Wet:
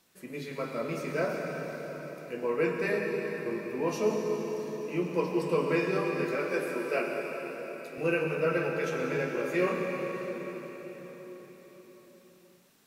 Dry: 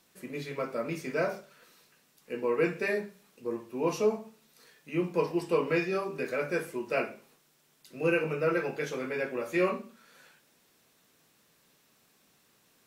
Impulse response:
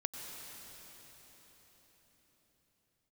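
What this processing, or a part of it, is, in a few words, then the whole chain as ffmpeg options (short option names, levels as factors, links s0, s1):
cathedral: -filter_complex "[1:a]atrim=start_sample=2205[s0];[0:a][s0]afir=irnorm=-1:irlink=0,asettb=1/sr,asplit=3[s1][s2][s3];[s1]atrim=end=6.354[s4];[s2]atrim=start=6.35:end=7.98,asetpts=PTS-STARTPTS,afade=t=in:d=0.004:c=qsin,afade=t=out:st=1.626:d=0.004:c=qsin,highpass=230[s5];[s3]atrim=start=7.976[s6];[s4][s5]acrossfade=d=0.004:c1=hsin:c2=qsin[s7];[s7][s6]acrossfade=d=0.004:c1=qsin:c2=hsin"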